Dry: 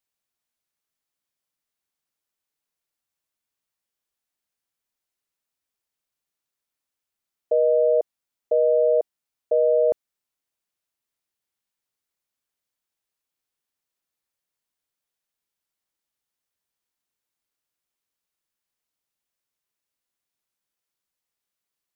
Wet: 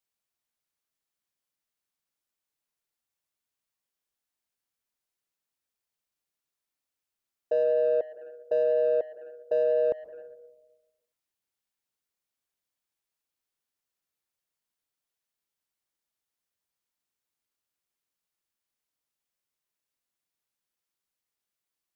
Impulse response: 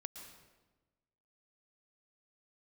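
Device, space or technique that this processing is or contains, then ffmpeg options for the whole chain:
saturated reverb return: -filter_complex "[0:a]asplit=2[s0][s1];[1:a]atrim=start_sample=2205[s2];[s1][s2]afir=irnorm=-1:irlink=0,asoftclip=type=tanh:threshold=0.0282,volume=0.891[s3];[s0][s3]amix=inputs=2:normalize=0,volume=0.473"

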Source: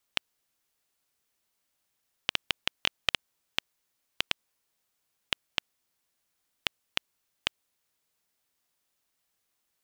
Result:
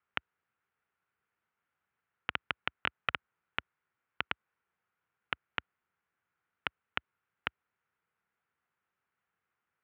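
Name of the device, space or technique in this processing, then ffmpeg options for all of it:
bass cabinet: -af "highpass=f=65:w=0.5412,highpass=f=65:w=1.3066,equalizer=f=280:t=q:w=4:g=-8,equalizer=f=610:t=q:w=4:g=-7,equalizer=f=1400:t=q:w=4:g=7,lowpass=f=2300:w=0.5412,lowpass=f=2300:w=1.3066"

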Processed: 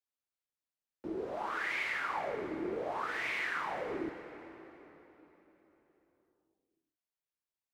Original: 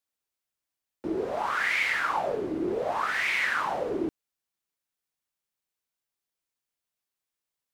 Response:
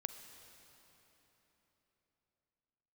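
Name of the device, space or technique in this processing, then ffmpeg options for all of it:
swimming-pool hall: -filter_complex "[1:a]atrim=start_sample=2205[s0];[0:a][s0]afir=irnorm=-1:irlink=0,highshelf=f=4700:g=-5,volume=0.501"

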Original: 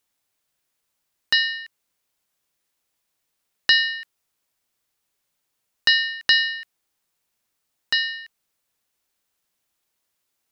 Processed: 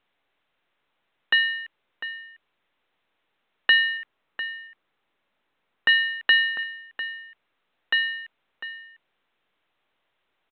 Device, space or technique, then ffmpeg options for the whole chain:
telephone: -filter_complex "[0:a]asettb=1/sr,asplit=3[s0][s1][s2];[s0]atrim=end=3.974[s3];[s1]atrim=start=3.97:end=5.89,asetpts=PTS-STARTPTS,afade=t=in:d=0.004:c=qsin,afade=t=out:st=1.916:d=0.004:c=qsin,bass=f=250:g=5,treble=f=4000:g=-14[s4];[s2]atrim=start=5.886[s5];[s3][s4]acrossfade=d=0.004:c1=hsin:c2=qsin[s6];[s6][s5]acrossfade=d=0.004:c1=qsin:c2=hsin,highpass=280,lowpass=3200,asplit=2[s7][s8];[s8]adelay=699.7,volume=0.316,highshelf=f=4000:g=-15.7[s9];[s7][s9]amix=inputs=2:normalize=0,volume=1.19" -ar 8000 -c:a pcm_mulaw

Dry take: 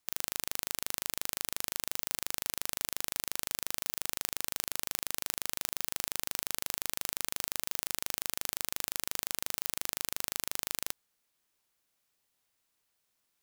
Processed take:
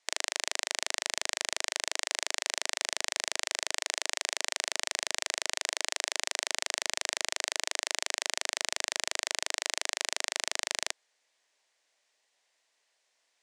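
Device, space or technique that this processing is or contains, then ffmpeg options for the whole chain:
phone speaker on a table: -af "highpass=f=350:w=0.5412,highpass=f=350:w=1.3066,equalizer=f=350:t=q:w=4:g=-6,equalizer=f=630:t=q:w=4:g=4,equalizer=f=1300:t=q:w=4:g=-6,equalizer=f=1900:t=q:w=4:g=5,lowpass=f=7800:w=0.5412,lowpass=f=7800:w=1.3066,volume=2.24"

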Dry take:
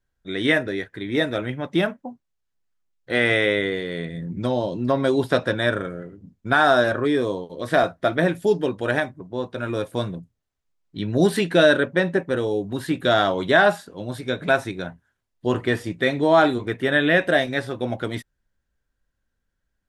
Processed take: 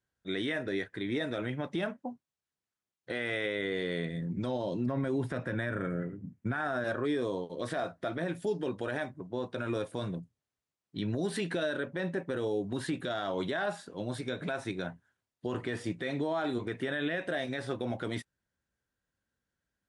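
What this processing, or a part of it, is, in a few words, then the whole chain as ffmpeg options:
podcast mastering chain: -filter_complex "[0:a]asettb=1/sr,asplit=3[s0][s1][s2];[s0]atrim=end=4.864[s3];[s1]atrim=start=4.86:end=6.84,asetpts=PTS-STARTPTS,afade=t=in:d=0.004:c=qsin,afade=t=out:st=1.976:d=0.004:c=qsin,equalizer=f=125:t=o:w=1:g=9,equalizer=f=250:t=o:w=1:g=4,equalizer=f=2000:t=o:w=1:g=7,equalizer=f=4000:t=o:w=1:g=-9[s4];[s2]atrim=start=6.836[s5];[s3][s4]acrossfade=d=0.004:c1=hsin:c2=qsin[s6];[s6][s5]acrossfade=d=0.004:c1=qsin:c2=hsin,highpass=94,acompressor=threshold=0.0794:ratio=3,alimiter=limit=0.106:level=0:latency=1:release=36,volume=0.668" -ar 24000 -c:a libmp3lame -b:a 96k

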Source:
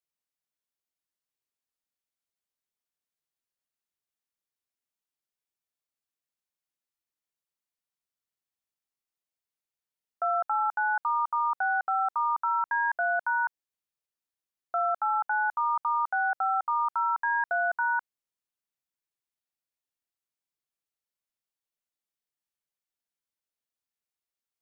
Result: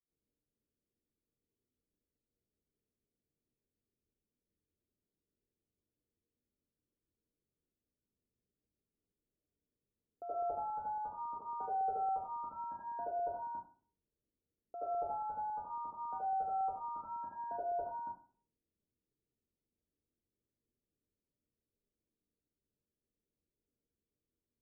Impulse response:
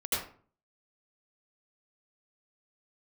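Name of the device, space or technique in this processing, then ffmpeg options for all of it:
next room: -filter_complex "[0:a]lowpass=f=400:w=0.5412,lowpass=f=400:w=1.3066[s0];[1:a]atrim=start_sample=2205[s1];[s0][s1]afir=irnorm=-1:irlink=0,asettb=1/sr,asplit=3[s2][s3][s4];[s2]atrim=end=11.364[s5];[s3]atrim=start=11.36:end=12.09,asetpts=PTS-STARTPTS,afade=t=in:d=0.004:c=qsin,afade=t=out:st=0.726:d=0.004:c=qsin,equalizer=f=430:t=o:w=0.28:g=13.5[s6];[s4]atrim=start=12.086[s7];[s5][s6]acrossfade=d=0.004:c1=hsin:c2=qsin[s8];[s8][s7]acrossfade=d=0.004:c1=qsin:c2=hsin,volume=2.66"

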